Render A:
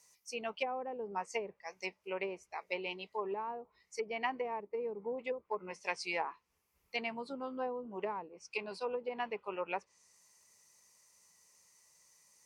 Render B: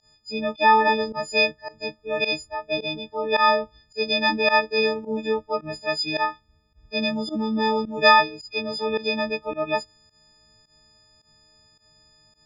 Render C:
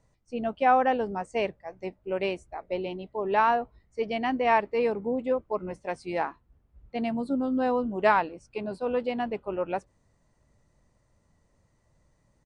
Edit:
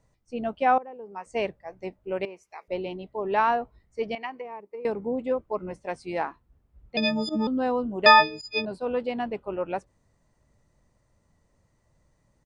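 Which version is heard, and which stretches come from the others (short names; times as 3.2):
C
0.78–1.26 from A
2.25–2.68 from A
4.15–4.85 from A
6.97–7.47 from B
8.06–8.65 from B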